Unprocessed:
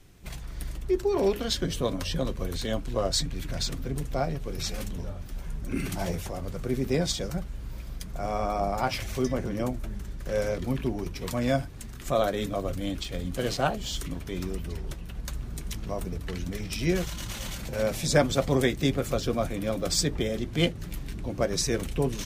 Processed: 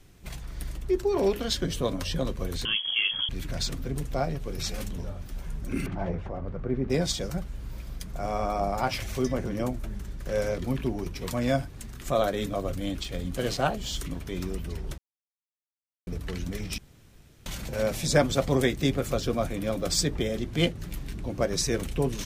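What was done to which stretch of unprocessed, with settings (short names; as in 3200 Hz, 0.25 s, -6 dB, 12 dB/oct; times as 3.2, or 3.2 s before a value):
2.65–3.29 inverted band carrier 3300 Hz
5.86–6.9 LPF 1600 Hz
14.98–16.07 mute
16.78–17.46 room tone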